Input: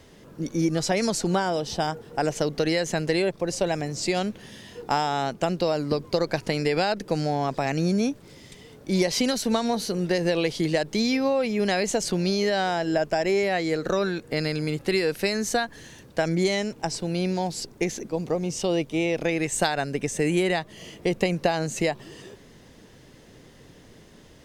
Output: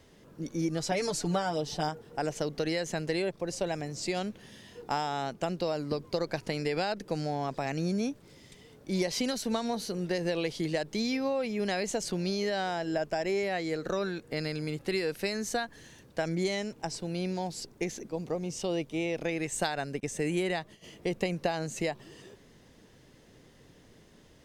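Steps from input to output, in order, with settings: 0.91–1.89 comb 6.8 ms, depth 68%; 20–20.84 gate -41 dBFS, range -20 dB; gain -7 dB

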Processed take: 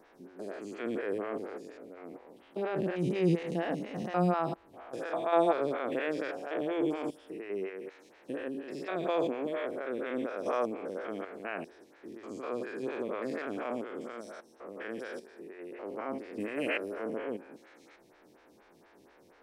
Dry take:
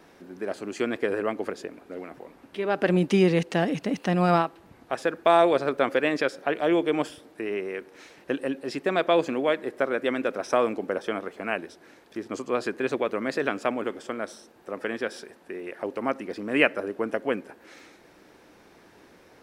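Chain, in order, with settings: stepped spectrum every 0.2 s; 16.4–17.04 high shelf 4400 Hz +9 dB; photocell phaser 4.2 Hz; gain -2.5 dB

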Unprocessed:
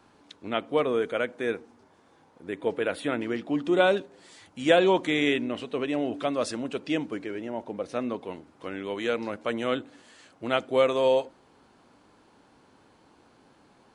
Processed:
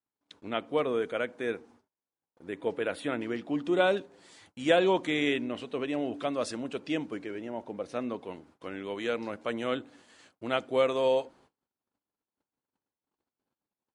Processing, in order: gate -54 dBFS, range -36 dB; gain -3.5 dB

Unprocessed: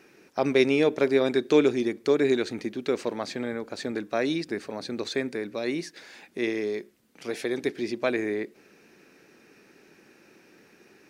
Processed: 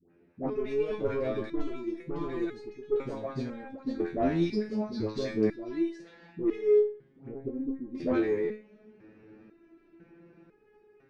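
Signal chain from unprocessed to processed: AGC gain up to 11 dB; low-pass opened by the level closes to 2800 Hz, open at -13 dBFS; dispersion highs, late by 0.104 s, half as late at 800 Hz; added harmonics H 2 -21 dB, 3 -9 dB, 4 -43 dB, 5 -13 dB, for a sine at -1.5 dBFS; tilt -4 dB/oct; flange 0.78 Hz, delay 7.7 ms, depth 8.7 ms, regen -90%; 4.42–5.68 bell 5200 Hz +13 dB 0.58 oct; 6.78–7.95 treble ducked by the level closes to 510 Hz, closed at -21 dBFS; stepped resonator 2 Hz 86–420 Hz

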